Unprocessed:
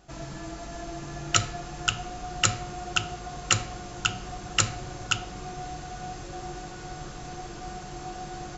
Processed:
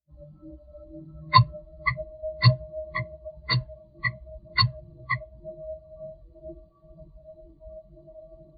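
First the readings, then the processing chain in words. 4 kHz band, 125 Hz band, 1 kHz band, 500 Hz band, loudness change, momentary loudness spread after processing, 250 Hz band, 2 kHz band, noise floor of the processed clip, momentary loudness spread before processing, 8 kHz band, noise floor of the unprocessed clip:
-1.0 dB, +8.5 dB, +4.5 dB, +2.5 dB, +5.0 dB, 24 LU, -1.5 dB, +1.5 dB, -56 dBFS, 14 LU, n/a, -40 dBFS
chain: inharmonic rescaling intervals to 86%; phaser 2 Hz, delay 1.9 ms, feedback 25%; spectral expander 2.5:1; gain +8 dB

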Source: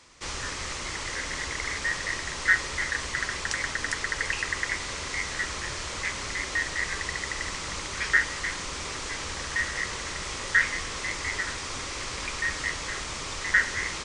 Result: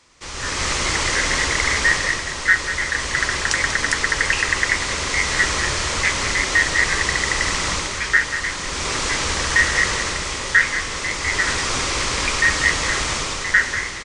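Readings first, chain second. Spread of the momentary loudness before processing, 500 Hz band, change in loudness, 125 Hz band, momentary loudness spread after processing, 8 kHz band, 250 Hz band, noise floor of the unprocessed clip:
9 LU, +10.5 dB, +10.0 dB, +10.5 dB, 6 LU, +10.5 dB, +10.5 dB, -35 dBFS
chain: AGC gain up to 14 dB; echo 0.191 s -10.5 dB; gain -1 dB

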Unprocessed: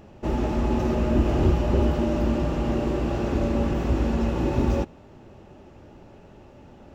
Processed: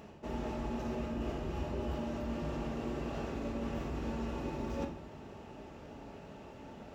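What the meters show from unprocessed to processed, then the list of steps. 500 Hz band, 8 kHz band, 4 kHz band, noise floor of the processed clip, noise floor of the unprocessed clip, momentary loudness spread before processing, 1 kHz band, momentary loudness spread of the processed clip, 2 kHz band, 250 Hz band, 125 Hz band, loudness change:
-13.0 dB, n/a, -10.0 dB, -51 dBFS, -49 dBFS, 4 LU, -11.0 dB, 12 LU, -10.5 dB, -13.5 dB, -16.0 dB, -14.5 dB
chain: HPF 44 Hz; low shelf 410 Hz -6 dB; reverse; compressor 5:1, threshold -38 dBFS, peak gain reduction 16 dB; reverse; shoebox room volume 720 m³, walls furnished, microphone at 1.6 m

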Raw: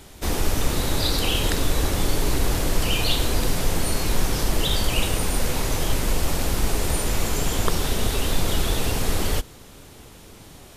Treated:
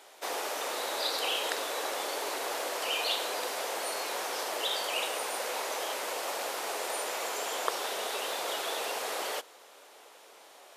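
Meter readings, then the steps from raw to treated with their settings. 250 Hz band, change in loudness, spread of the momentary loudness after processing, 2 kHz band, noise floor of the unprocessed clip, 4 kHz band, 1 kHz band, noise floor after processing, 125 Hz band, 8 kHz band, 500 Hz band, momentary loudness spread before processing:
-20.5 dB, -8.0 dB, 4 LU, -4.5 dB, -45 dBFS, -6.0 dB, -2.5 dB, -55 dBFS, under -40 dB, -8.5 dB, -5.5 dB, 3 LU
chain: HPF 540 Hz 24 dB/oct; tilt -2 dB/oct; gain -2.5 dB

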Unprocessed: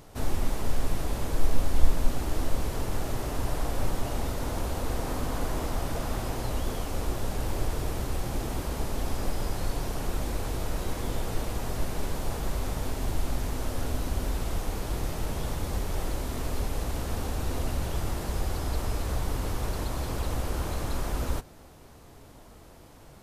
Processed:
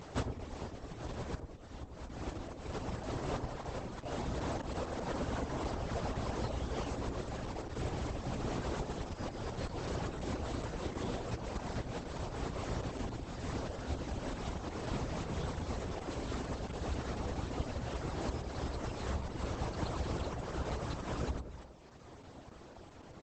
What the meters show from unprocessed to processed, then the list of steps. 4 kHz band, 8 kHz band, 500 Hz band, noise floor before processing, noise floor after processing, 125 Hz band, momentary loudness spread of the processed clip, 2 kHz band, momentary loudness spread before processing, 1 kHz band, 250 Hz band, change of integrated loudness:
-7.5 dB, -12.0 dB, -4.0 dB, -50 dBFS, -53 dBFS, -7.0 dB, 7 LU, -6.0 dB, 2 LU, -5.0 dB, -4.5 dB, -7.0 dB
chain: vocal rider 2 s; high shelf 5500 Hz -8.5 dB; notches 50/100/150/200/250/300/350/400/450 Hz; echo 0.24 s -14 dB; compressor 8:1, threshold -31 dBFS, peak gain reduction 20.5 dB; HPF 63 Hz 12 dB/oct; reverb removal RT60 1.4 s; dark delay 0.101 s, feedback 37%, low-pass 770 Hz, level -5 dB; gain +4.5 dB; Opus 10 kbps 48000 Hz

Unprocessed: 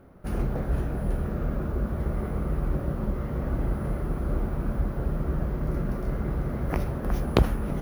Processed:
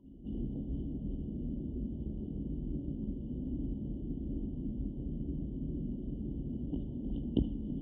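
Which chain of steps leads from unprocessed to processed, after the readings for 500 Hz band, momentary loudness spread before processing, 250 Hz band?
-15.5 dB, 4 LU, -5.0 dB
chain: whine 1000 Hz -40 dBFS; vocal tract filter i; FFT band-reject 990–2800 Hz; reverse echo 0.207 s -16 dB

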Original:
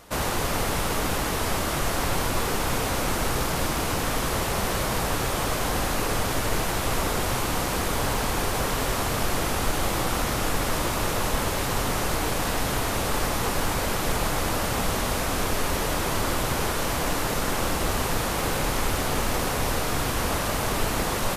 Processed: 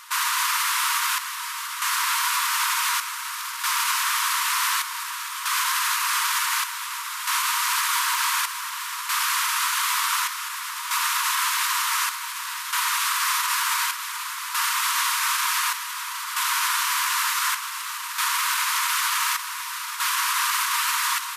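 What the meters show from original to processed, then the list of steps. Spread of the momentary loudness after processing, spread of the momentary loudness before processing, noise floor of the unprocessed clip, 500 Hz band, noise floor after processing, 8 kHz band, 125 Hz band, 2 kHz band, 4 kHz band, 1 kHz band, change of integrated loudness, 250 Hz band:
8 LU, 0 LU, -27 dBFS, under -40 dB, -32 dBFS, +5.5 dB, under -40 dB, +5.5 dB, +5.5 dB, +3.0 dB, +3.0 dB, under -40 dB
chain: brick-wall FIR high-pass 910 Hz; limiter -22 dBFS, peak gain reduction 6 dB; chopper 0.55 Hz, depth 60%, duty 65%; gain +8.5 dB

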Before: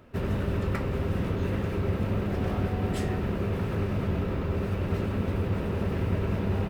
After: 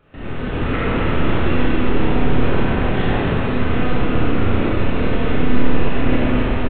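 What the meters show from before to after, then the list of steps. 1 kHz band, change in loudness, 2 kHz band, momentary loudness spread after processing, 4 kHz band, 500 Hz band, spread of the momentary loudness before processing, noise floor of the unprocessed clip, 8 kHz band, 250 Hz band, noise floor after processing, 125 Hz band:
+13.0 dB, +9.5 dB, +14.5 dB, 2 LU, +14.0 dB, +9.5 dB, 1 LU, -31 dBFS, n/a, +11.0 dB, -24 dBFS, +6.0 dB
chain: monotone LPC vocoder at 8 kHz 250 Hz; AGC gain up to 6.5 dB; tilt shelf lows -3 dB; echo 0.265 s -6 dB; Schroeder reverb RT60 1.6 s, combs from 25 ms, DRR -7.5 dB; gain -2.5 dB

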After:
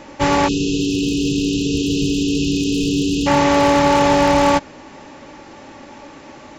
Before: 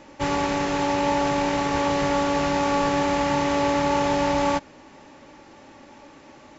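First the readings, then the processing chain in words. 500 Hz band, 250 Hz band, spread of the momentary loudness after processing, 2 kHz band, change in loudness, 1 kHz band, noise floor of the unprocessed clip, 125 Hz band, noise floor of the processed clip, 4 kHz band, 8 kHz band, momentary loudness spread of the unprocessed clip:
+5.0 dB, +8.5 dB, 5 LU, +4.5 dB, +6.0 dB, +4.0 dB, -49 dBFS, +8.5 dB, -40 dBFS, +8.5 dB, n/a, 2 LU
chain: wavefolder -14.5 dBFS; spectral delete 0.48–3.27, 490–2500 Hz; gain +8.5 dB

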